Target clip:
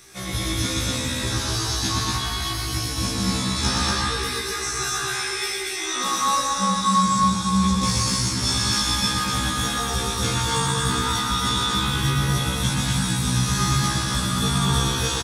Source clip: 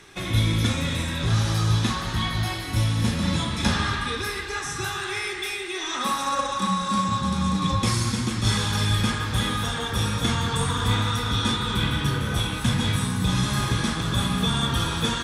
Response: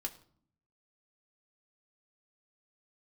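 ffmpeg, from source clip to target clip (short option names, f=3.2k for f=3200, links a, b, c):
-filter_complex "[0:a]acrossover=split=7900[a][b];[b]acompressor=threshold=-51dB:ratio=4:attack=1:release=60[c];[a][c]amix=inputs=2:normalize=0,aexciter=amount=2:drive=8.6:freq=4.5k,aecho=1:1:122.4|239.1:0.708|0.891,afftfilt=real='re*1.73*eq(mod(b,3),0)':imag='im*1.73*eq(mod(b,3),0)':win_size=2048:overlap=0.75"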